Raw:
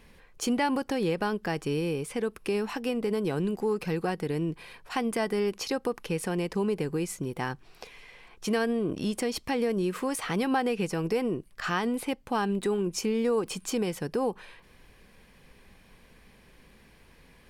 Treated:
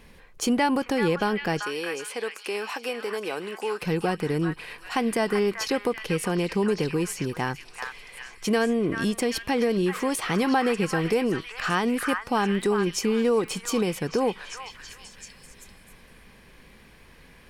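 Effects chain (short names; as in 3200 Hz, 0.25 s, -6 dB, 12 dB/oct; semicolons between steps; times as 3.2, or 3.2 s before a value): 1.61–3.82 HPF 540 Hz 12 dB/oct; delay with a stepping band-pass 0.388 s, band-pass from 1500 Hz, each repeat 0.7 oct, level -2 dB; gain +4 dB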